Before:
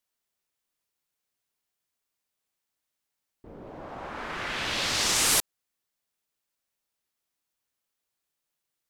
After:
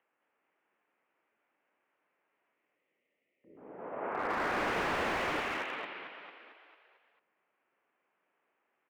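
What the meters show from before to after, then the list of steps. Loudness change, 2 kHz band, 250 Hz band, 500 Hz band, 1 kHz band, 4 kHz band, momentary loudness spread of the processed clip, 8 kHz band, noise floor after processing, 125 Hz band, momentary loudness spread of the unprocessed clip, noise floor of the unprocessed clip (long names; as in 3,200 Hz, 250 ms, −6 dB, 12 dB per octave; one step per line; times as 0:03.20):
−9.0 dB, −2.0 dB, +0.5 dB, +3.0 dB, +1.5 dB, −15.0 dB, 16 LU, −27.0 dB, −82 dBFS, −5.5 dB, 19 LU, −84 dBFS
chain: adaptive Wiener filter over 9 samples
gain on a spectral selection 0:02.54–0:03.57, 750–1,900 Hz −29 dB
downward expander −36 dBFS
downward compressor 1.5 to 1, threshold −32 dBFS, peak gain reduction 5 dB
brickwall limiter −20.5 dBFS, peak gain reduction 5 dB
upward compression, threshold −53 dBFS
on a send: echo with shifted repeats 224 ms, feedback 56%, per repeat +69 Hz, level −3 dB
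on the sum: single-sideband voice off tune −130 Hz 410–2,800 Hz
slew-rate limiting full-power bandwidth 23 Hz
level +4.5 dB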